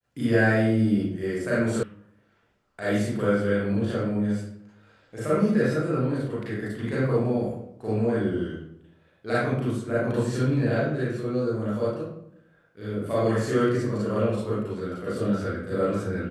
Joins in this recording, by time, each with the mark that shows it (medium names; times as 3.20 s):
1.83 s: sound stops dead